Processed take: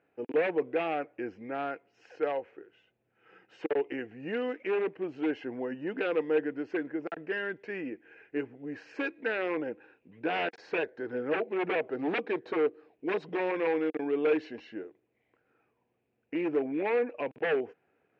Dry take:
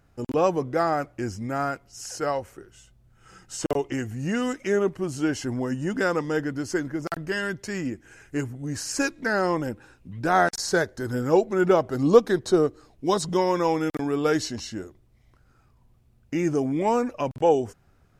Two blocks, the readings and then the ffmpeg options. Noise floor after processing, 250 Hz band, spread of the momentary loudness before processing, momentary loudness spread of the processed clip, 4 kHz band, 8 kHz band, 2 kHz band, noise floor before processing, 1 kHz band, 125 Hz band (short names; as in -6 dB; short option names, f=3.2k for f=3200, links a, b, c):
-77 dBFS, -8.0 dB, 11 LU, 11 LU, -10.0 dB, under -35 dB, -5.0 dB, -61 dBFS, -10.5 dB, -19.5 dB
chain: -af "aeval=exprs='0.112*(abs(mod(val(0)/0.112+3,4)-2)-1)':c=same,highpass=280,equalizer=f=310:t=q:w=4:g=5,equalizer=f=460:t=q:w=4:g=10,equalizer=f=760:t=q:w=4:g=3,equalizer=f=1.2k:t=q:w=4:g=-5,equalizer=f=1.7k:t=q:w=4:g=4,equalizer=f=2.5k:t=q:w=4:g=8,lowpass=f=2.9k:w=0.5412,lowpass=f=2.9k:w=1.3066,volume=-8dB"